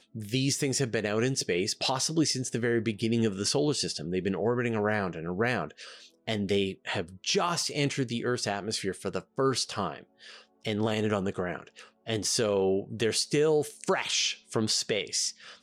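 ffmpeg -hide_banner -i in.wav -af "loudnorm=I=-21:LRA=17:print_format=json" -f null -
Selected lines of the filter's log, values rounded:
"input_i" : "-28.7",
"input_tp" : "-16.0",
"input_lra" : "2.7",
"input_thresh" : "-39.0",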